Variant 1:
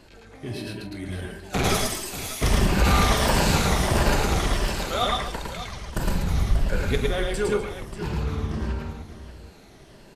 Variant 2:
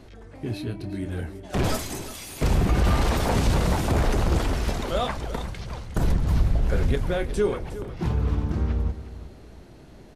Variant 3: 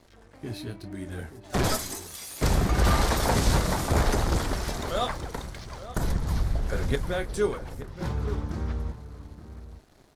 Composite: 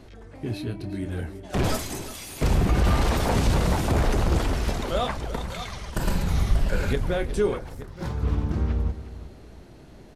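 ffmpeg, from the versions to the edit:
ffmpeg -i take0.wav -i take1.wav -i take2.wav -filter_complex "[1:a]asplit=3[link_01][link_02][link_03];[link_01]atrim=end=5.502[link_04];[0:a]atrim=start=5.498:end=6.932[link_05];[link_02]atrim=start=6.928:end=7.602[link_06];[2:a]atrim=start=7.598:end=8.232[link_07];[link_03]atrim=start=8.228[link_08];[link_04][link_05]acrossfade=duration=0.004:curve1=hsin:curve2=hsin[link_09];[link_09][link_06]acrossfade=duration=0.004:curve1=hsin:curve2=hsin[link_10];[link_10][link_07]acrossfade=duration=0.004:curve1=hsin:curve2=hsin[link_11];[link_11][link_08]acrossfade=duration=0.004:curve1=hsin:curve2=hsin" out.wav

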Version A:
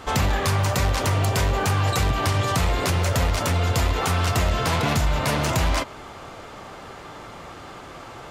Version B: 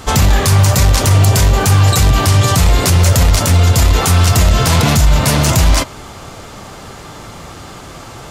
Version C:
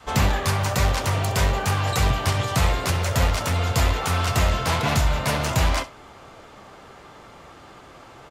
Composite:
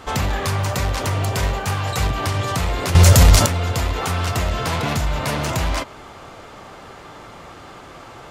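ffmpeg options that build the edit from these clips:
ffmpeg -i take0.wav -i take1.wav -i take2.wav -filter_complex "[0:a]asplit=3[link_01][link_02][link_03];[link_01]atrim=end=1.432[link_04];[2:a]atrim=start=1.428:end=2.072[link_05];[link_02]atrim=start=2.068:end=2.952[link_06];[1:a]atrim=start=2.948:end=3.462[link_07];[link_03]atrim=start=3.458[link_08];[link_04][link_05]acrossfade=duration=0.004:curve1=hsin:curve2=hsin[link_09];[link_09][link_06]acrossfade=duration=0.004:curve1=hsin:curve2=hsin[link_10];[link_10][link_07]acrossfade=duration=0.004:curve1=hsin:curve2=hsin[link_11];[link_11][link_08]acrossfade=duration=0.004:curve1=hsin:curve2=hsin" out.wav

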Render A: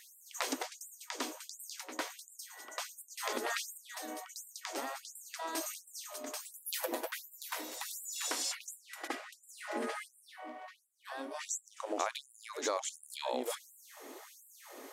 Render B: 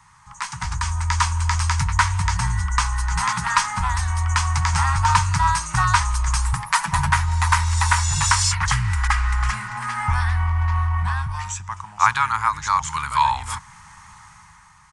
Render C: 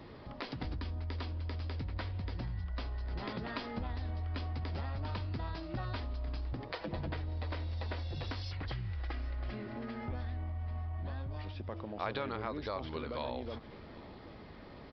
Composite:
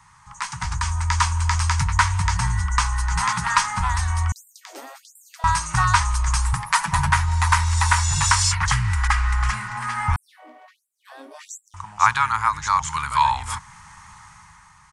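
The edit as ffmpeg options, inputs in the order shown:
ffmpeg -i take0.wav -i take1.wav -filter_complex "[0:a]asplit=2[link_01][link_02];[1:a]asplit=3[link_03][link_04][link_05];[link_03]atrim=end=4.322[link_06];[link_01]atrim=start=4.318:end=5.442[link_07];[link_04]atrim=start=5.438:end=10.162[link_08];[link_02]atrim=start=10.158:end=11.742[link_09];[link_05]atrim=start=11.738[link_10];[link_06][link_07]acrossfade=duration=0.004:curve1=hsin:curve2=hsin[link_11];[link_11][link_08]acrossfade=duration=0.004:curve1=hsin:curve2=hsin[link_12];[link_12][link_09]acrossfade=duration=0.004:curve1=hsin:curve2=hsin[link_13];[link_13][link_10]acrossfade=duration=0.004:curve1=hsin:curve2=hsin" out.wav

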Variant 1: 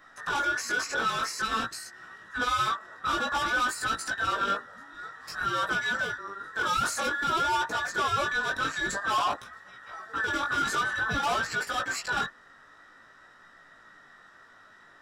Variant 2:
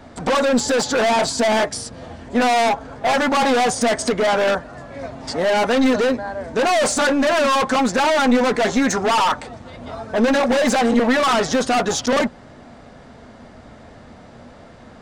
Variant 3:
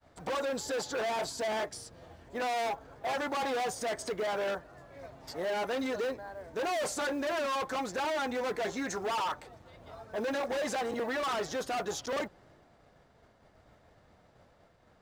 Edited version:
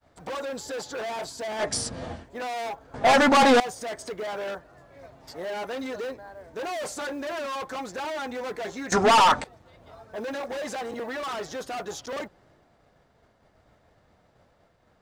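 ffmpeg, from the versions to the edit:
ffmpeg -i take0.wav -i take1.wav -i take2.wav -filter_complex "[1:a]asplit=3[link_01][link_02][link_03];[2:a]asplit=4[link_04][link_05][link_06][link_07];[link_04]atrim=end=1.74[link_08];[link_01]atrim=start=1.58:end=2.27[link_09];[link_05]atrim=start=2.11:end=2.942[link_10];[link_02]atrim=start=2.938:end=3.602[link_11];[link_06]atrim=start=3.598:end=8.922[link_12];[link_03]atrim=start=8.918:end=9.442[link_13];[link_07]atrim=start=9.438[link_14];[link_08][link_09]acrossfade=duration=0.16:curve1=tri:curve2=tri[link_15];[link_15][link_10]acrossfade=duration=0.16:curve1=tri:curve2=tri[link_16];[link_16][link_11]acrossfade=duration=0.004:curve1=hsin:curve2=hsin[link_17];[link_17][link_12]acrossfade=duration=0.004:curve1=hsin:curve2=hsin[link_18];[link_18][link_13]acrossfade=duration=0.004:curve1=hsin:curve2=hsin[link_19];[link_19][link_14]acrossfade=duration=0.004:curve1=hsin:curve2=hsin" out.wav

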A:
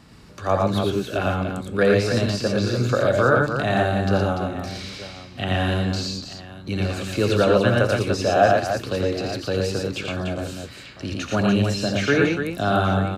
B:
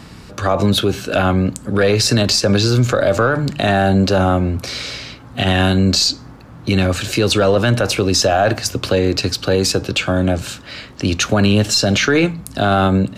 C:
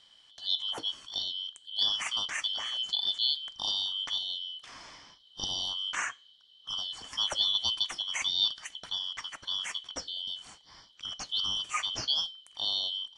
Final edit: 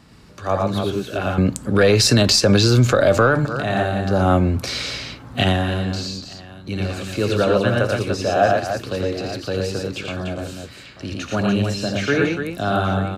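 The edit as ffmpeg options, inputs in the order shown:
ffmpeg -i take0.wav -i take1.wav -filter_complex "[1:a]asplit=2[link_01][link_02];[0:a]asplit=3[link_03][link_04][link_05];[link_03]atrim=end=1.382[link_06];[link_01]atrim=start=1.378:end=3.452[link_07];[link_04]atrim=start=3.448:end=4.32[link_08];[link_02]atrim=start=4.08:end=5.67[link_09];[link_05]atrim=start=5.43[link_10];[link_06][link_07]acrossfade=duration=0.004:curve1=hsin:curve2=hsin[link_11];[link_11][link_08]acrossfade=duration=0.004:curve1=hsin:curve2=hsin[link_12];[link_12][link_09]acrossfade=duration=0.24:curve1=tri:curve2=tri[link_13];[link_13][link_10]acrossfade=duration=0.24:curve1=tri:curve2=tri" out.wav

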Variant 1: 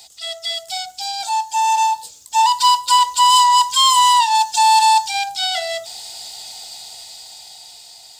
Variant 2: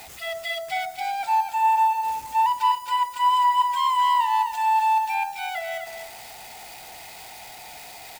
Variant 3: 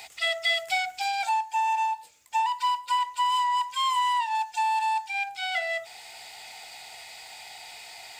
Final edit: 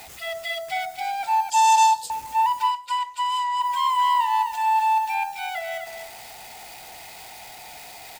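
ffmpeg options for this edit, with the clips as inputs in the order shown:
ffmpeg -i take0.wav -i take1.wav -i take2.wav -filter_complex "[1:a]asplit=3[link_01][link_02][link_03];[link_01]atrim=end=1.502[link_04];[0:a]atrim=start=1.498:end=2.102[link_05];[link_02]atrim=start=2.098:end=2.74[link_06];[2:a]atrim=start=2.64:end=3.67[link_07];[link_03]atrim=start=3.57[link_08];[link_04][link_05]acrossfade=duration=0.004:curve1=hsin:curve2=hsin[link_09];[link_09][link_06]acrossfade=duration=0.004:curve1=hsin:curve2=hsin[link_10];[link_10][link_07]acrossfade=duration=0.1:curve1=tri:curve2=tri[link_11];[link_11][link_08]acrossfade=duration=0.1:curve1=tri:curve2=tri" out.wav

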